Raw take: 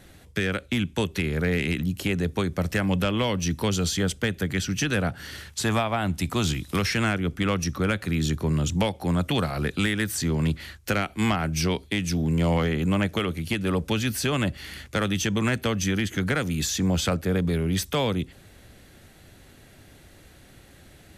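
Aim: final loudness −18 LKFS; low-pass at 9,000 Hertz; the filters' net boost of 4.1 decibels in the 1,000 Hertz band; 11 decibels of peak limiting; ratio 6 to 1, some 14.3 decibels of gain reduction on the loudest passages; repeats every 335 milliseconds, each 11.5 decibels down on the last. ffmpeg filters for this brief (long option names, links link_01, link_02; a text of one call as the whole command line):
ffmpeg -i in.wav -af "lowpass=9000,equalizer=frequency=1000:width_type=o:gain=5.5,acompressor=threshold=-35dB:ratio=6,alimiter=level_in=6.5dB:limit=-24dB:level=0:latency=1,volume=-6.5dB,aecho=1:1:335|670|1005:0.266|0.0718|0.0194,volume=21.5dB" out.wav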